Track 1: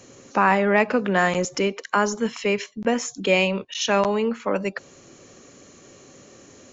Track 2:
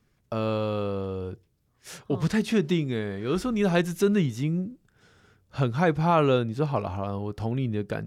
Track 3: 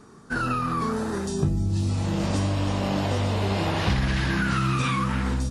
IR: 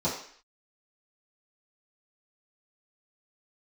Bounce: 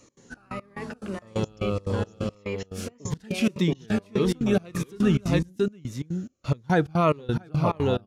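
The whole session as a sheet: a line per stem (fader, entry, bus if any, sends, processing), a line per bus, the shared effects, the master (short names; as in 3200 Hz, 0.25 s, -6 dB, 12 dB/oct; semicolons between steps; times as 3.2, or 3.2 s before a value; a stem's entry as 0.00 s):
-7.5 dB, 0.00 s, no send, no echo send, limiter -16 dBFS, peak gain reduction 10 dB
+2.5 dB, 0.90 s, no send, echo send -4 dB, dry
-10.0 dB, 0.00 s, muted 2.35–4.67, no send, no echo send, dry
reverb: off
echo: echo 0.678 s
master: step gate "x.xx..x..x" 177 bpm -24 dB; cascading phaser falling 1.7 Hz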